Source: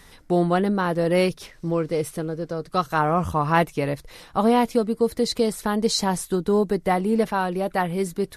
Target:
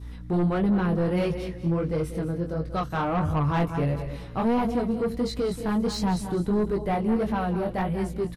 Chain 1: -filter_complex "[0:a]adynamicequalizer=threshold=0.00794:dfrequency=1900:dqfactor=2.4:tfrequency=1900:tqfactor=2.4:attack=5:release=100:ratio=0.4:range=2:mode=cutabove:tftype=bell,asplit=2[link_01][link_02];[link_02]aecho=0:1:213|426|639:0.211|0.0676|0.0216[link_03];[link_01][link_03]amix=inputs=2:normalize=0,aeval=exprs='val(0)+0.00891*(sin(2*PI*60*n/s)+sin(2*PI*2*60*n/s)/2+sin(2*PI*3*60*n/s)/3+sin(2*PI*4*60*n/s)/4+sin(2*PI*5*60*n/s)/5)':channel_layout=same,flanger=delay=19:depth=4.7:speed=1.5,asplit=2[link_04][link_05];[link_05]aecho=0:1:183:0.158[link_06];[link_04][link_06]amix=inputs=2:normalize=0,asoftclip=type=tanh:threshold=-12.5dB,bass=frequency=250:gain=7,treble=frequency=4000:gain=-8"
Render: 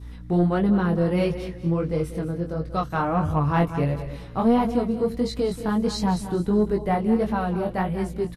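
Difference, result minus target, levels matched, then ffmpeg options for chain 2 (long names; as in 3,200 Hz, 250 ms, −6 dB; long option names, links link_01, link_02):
soft clipping: distortion −10 dB
-filter_complex "[0:a]adynamicequalizer=threshold=0.00794:dfrequency=1900:dqfactor=2.4:tfrequency=1900:tqfactor=2.4:attack=5:release=100:ratio=0.4:range=2:mode=cutabove:tftype=bell,asplit=2[link_01][link_02];[link_02]aecho=0:1:213|426|639:0.211|0.0676|0.0216[link_03];[link_01][link_03]amix=inputs=2:normalize=0,aeval=exprs='val(0)+0.00891*(sin(2*PI*60*n/s)+sin(2*PI*2*60*n/s)/2+sin(2*PI*3*60*n/s)/3+sin(2*PI*4*60*n/s)/4+sin(2*PI*5*60*n/s)/5)':channel_layout=same,flanger=delay=19:depth=4.7:speed=1.5,asplit=2[link_04][link_05];[link_05]aecho=0:1:183:0.158[link_06];[link_04][link_06]amix=inputs=2:normalize=0,asoftclip=type=tanh:threshold=-21.5dB,bass=frequency=250:gain=7,treble=frequency=4000:gain=-8"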